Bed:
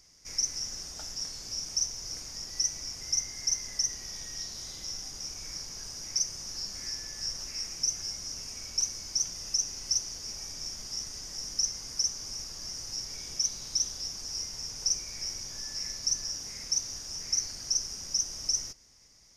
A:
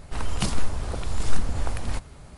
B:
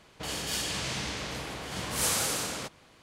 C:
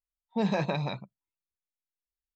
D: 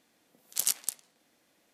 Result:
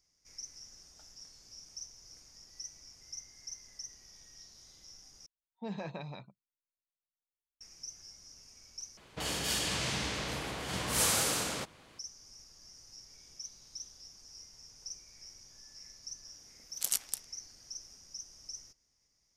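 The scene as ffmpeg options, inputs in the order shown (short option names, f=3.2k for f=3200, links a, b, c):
-filter_complex "[0:a]volume=-16dB[a];[2:a]acontrast=77[b];[a]asplit=3[c][d][e];[c]atrim=end=5.264[f];[3:a]atrim=end=2.35,asetpts=PTS-STARTPTS,volume=-12.5dB[g];[d]atrim=start=7.606:end=8.974[h];[b]atrim=end=3.02,asetpts=PTS-STARTPTS,volume=-7.5dB[i];[e]atrim=start=11.986[j];[4:a]atrim=end=1.73,asetpts=PTS-STARTPTS,volume=-4dB,afade=t=in:d=0.004:c=hsin,afade=t=out:st=1.726:d=0.004:c=hsin,adelay=16250[k];[f][g]acrossfade=d=0.004:c1=hsin:c2=hsin[l];[l][h]acrossfade=d=0.004:c1=hsin:c2=hsin[m];[m][i]acrossfade=d=0.004:c1=hsin:c2=hsin[n];[n][j]acrossfade=d=0.004:c1=hsin:c2=hsin[o];[o][k]amix=inputs=2:normalize=0"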